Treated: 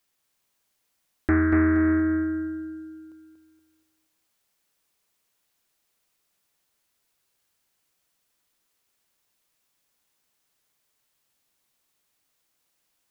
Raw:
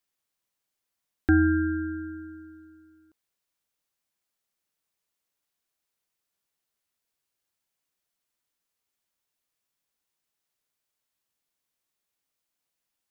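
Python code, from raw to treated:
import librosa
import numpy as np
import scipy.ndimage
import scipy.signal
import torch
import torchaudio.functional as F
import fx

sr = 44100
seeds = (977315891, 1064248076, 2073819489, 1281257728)

p1 = fx.over_compress(x, sr, threshold_db=-32.0, ratio=-1.0)
p2 = x + (p1 * librosa.db_to_amplitude(0.0))
p3 = fx.echo_feedback(p2, sr, ms=237, feedback_pct=37, wet_db=-5.0)
p4 = fx.doppler_dist(p3, sr, depth_ms=0.29)
y = p4 * librosa.db_to_amplitude(-1.5)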